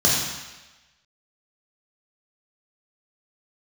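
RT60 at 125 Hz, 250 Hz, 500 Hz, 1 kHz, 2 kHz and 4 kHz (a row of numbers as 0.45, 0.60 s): 0.90, 1.0, 1.1, 1.2, 1.2, 1.2 s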